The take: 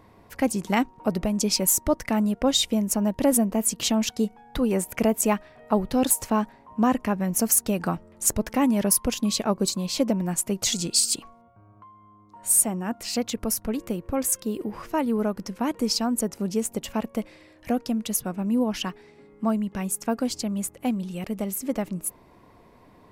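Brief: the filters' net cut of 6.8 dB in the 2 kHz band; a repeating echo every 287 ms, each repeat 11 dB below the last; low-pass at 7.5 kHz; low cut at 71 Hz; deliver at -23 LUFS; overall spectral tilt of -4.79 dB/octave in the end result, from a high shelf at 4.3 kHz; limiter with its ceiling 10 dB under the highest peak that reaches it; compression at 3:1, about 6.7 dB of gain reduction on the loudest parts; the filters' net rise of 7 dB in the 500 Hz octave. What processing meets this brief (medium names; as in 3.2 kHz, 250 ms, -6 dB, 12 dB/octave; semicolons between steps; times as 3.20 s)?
high-pass 71 Hz; low-pass 7.5 kHz; peaking EQ 500 Hz +9 dB; peaking EQ 2 kHz -8.5 dB; treble shelf 4.3 kHz -3.5 dB; compression 3:1, threshold -20 dBFS; peak limiter -18.5 dBFS; feedback delay 287 ms, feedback 28%, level -11 dB; trim +5.5 dB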